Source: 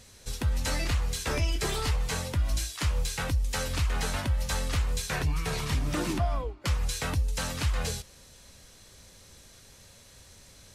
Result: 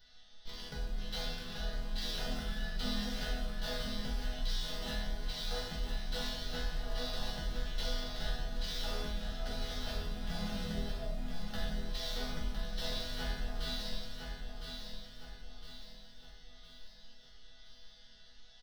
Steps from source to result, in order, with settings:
wrong playback speed 78 rpm record played at 45 rpm
high-shelf EQ 5,100 Hz +7 dB
phaser with its sweep stopped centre 1,600 Hz, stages 8
in parallel at −6.5 dB: comparator with hysteresis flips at −36.5 dBFS
on the sum: dynamic equaliser 1,400 Hz, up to −4 dB, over −43 dBFS, Q 0.74
resonators tuned to a chord E3 major, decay 0.68 s
repeating echo 1,009 ms, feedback 44%, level −6 dB
on a send at −4 dB: convolution reverb RT60 0.80 s, pre-delay 4 ms
on the sum: level +12 dB

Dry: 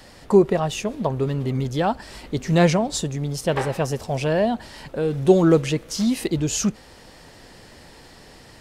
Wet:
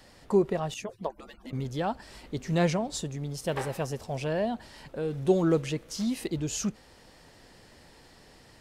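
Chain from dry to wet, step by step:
0:00.74–0:01.53: harmonic-percussive split with one part muted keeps percussive
0:03.44–0:03.85: high-shelf EQ 8,800 Hz +10.5 dB
level −8.5 dB

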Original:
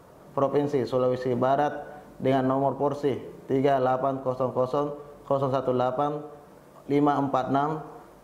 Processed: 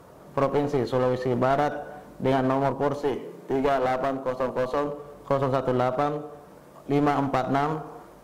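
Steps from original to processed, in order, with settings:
0:03.02–0:04.87: high-pass filter 150 Hz 24 dB per octave
asymmetric clip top −27.5 dBFS
level +2 dB

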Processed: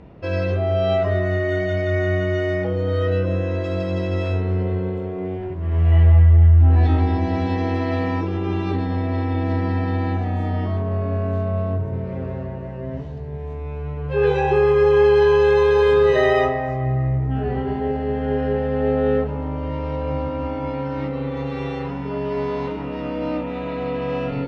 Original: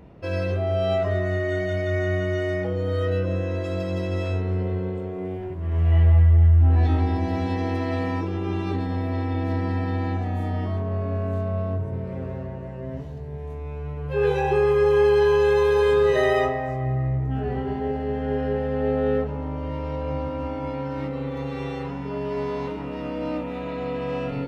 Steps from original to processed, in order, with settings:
low-pass filter 5,300 Hz 12 dB per octave
level +3.5 dB

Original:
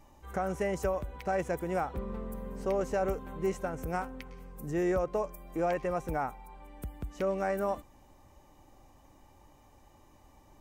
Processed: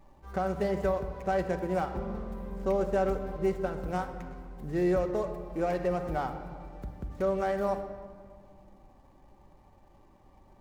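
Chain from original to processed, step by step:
running median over 15 samples
rectangular room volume 3,000 cubic metres, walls mixed, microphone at 1.1 metres

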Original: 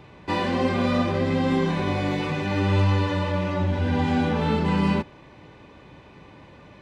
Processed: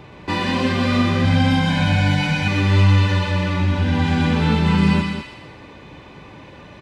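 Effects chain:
single-tap delay 196 ms −7.5 dB
dynamic equaliser 570 Hz, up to −8 dB, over −39 dBFS, Q 0.81
0:01.24–0:02.48: comb filter 1.3 ms, depth 91%
delay with a high-pass on its return 125 ms, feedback 49%, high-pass 1,700 Hz, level −4 dB
level +6 dB

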